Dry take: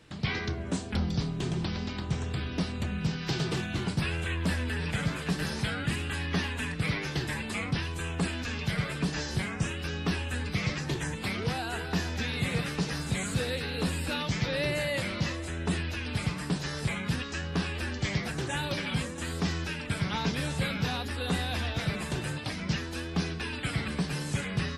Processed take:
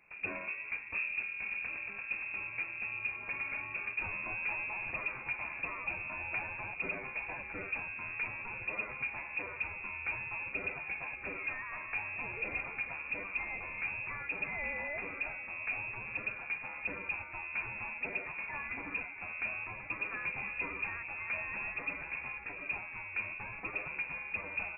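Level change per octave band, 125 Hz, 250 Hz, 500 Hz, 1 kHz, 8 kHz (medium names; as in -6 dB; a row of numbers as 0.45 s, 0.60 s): -24.5 dB, -21.0 dB, -12.5 dB, -6.5 dB, under -40 dB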